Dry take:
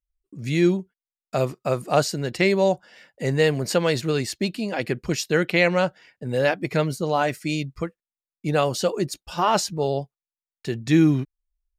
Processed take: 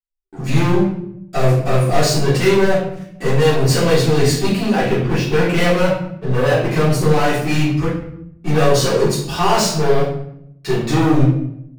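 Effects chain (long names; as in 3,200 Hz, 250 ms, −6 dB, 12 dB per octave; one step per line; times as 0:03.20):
0:04.79–0:06.70: low-pass filter 2,600 Hz 12 dB per octave
leveller curve on the samples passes 5
rectangular room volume 160 cubic metres, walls mixed, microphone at 3.6 metres
level −17.5 dB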